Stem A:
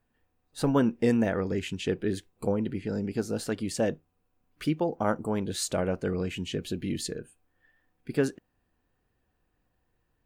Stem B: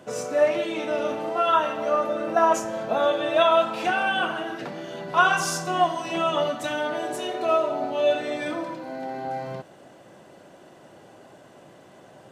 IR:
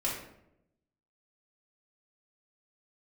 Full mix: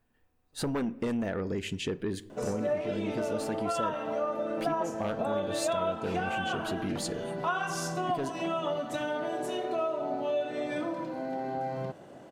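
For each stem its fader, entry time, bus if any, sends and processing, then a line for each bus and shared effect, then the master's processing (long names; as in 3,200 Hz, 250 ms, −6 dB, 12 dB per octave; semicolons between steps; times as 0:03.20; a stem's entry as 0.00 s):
−9.0 dB, 0.00 s, send −22.5 dB, sine wavefolder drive 6 dB, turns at −11.5 dBFS
−2.0 dB, 2.30 s, no send, tilt shelving filter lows +3.5 dB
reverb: on, RT60 0.80 s, pre-delay 3 ms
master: downward compressor 3 to 1, threshold −30 dBFS, peak gain reduction 11.5 dB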